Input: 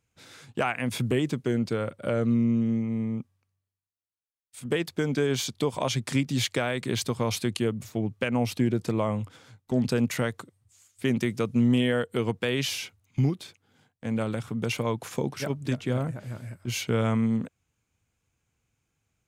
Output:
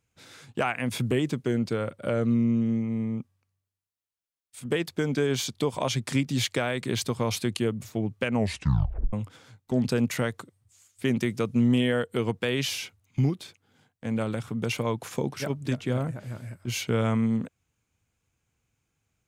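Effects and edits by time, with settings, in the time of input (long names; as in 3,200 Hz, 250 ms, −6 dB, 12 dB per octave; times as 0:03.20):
0:08.34: tape stop 0.79 s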